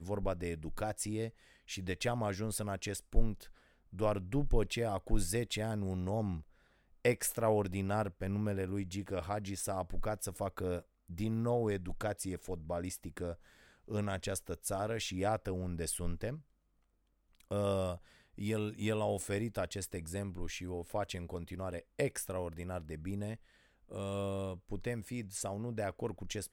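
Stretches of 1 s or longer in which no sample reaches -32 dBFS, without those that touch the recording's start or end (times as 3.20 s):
16.30–17.52 s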